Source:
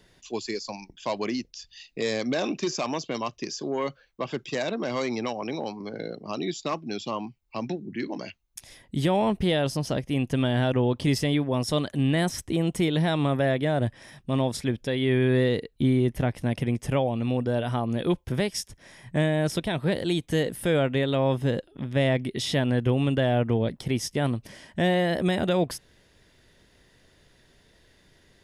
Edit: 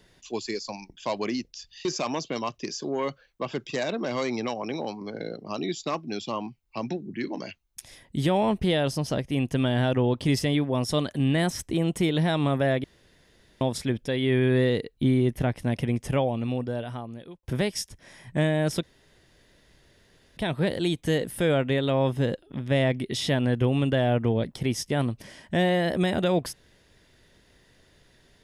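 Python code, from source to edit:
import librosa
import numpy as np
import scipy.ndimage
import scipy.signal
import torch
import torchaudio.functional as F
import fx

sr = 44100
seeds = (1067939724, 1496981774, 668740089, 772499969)

y = fx.edit(x, sr, fx.cut(start_s=1.85, length_s=0.79),
    fx.room_tone_fill(start_s=13.63, length_s=0.77),
    fx.fade_out_span(start_s=17.03, length_s=1.19),
    fx.insert_room_tone(at_s=19.62, length_s=1.54), tone=tone)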